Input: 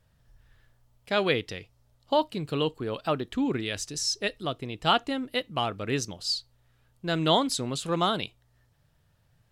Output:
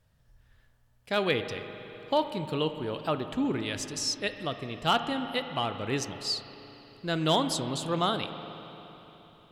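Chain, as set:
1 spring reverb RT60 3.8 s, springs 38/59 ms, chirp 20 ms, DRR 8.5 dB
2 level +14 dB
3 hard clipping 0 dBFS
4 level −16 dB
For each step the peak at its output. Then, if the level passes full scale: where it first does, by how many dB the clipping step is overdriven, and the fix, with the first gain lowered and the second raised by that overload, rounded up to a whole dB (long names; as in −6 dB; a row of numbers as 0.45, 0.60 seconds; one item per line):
−9.0, +5.0, 0.0, −16.0 dBFS
step 2, 5.0 dB
step 2 +9 dB, step 4 −11 dB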